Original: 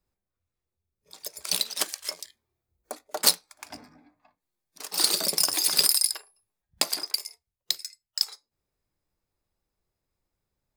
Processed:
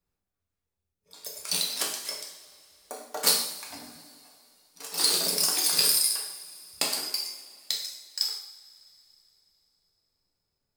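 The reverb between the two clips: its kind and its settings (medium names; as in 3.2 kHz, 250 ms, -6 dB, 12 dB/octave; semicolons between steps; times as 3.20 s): two-slope reverb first 0.7 s, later 3.4 s, from -20 dB, DRR -2.5 dB; trim -4.5 dB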